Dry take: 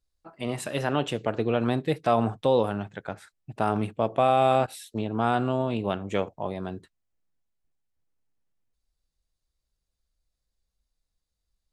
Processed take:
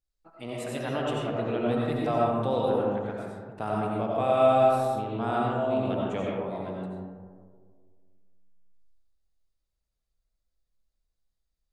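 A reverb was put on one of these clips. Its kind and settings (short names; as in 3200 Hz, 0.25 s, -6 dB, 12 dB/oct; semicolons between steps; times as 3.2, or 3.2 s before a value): digital reverb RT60 1.8 s, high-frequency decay 0.3×, pre-delay 50 ms, DRR -4 dB; gain -8 dB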